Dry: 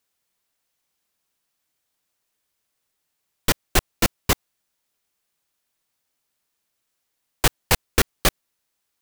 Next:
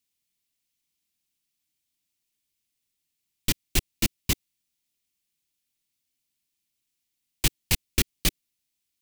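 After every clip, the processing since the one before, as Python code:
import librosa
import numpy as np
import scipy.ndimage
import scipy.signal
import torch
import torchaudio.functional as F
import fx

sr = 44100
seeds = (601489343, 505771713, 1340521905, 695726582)

y = fx.band_shelf(x, sr, hz=850.0, db=-12.5, octaves=2.3)
y = F.gain(torch.from_numpy(y), -3.5).numpy()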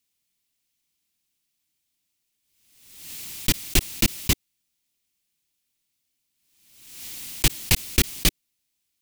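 y = fx.pre_swell(x, sr, db_per_s=56.0)
y = F.gain(torch.from_numpy(y), 3.5).numpy()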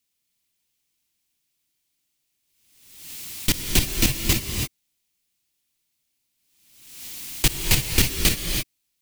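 y = fx.rev_gated(x, sr, seeds[0], gate_ms=350, shape='rising', drr_db=2.5)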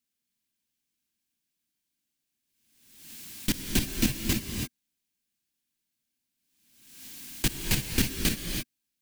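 y = fx.small_body(x, sr, hz=(230.0, 1600.0), ring_ms=30, db=10)
y = F.gain(torch.from_numpy(y), -8.0).numpy()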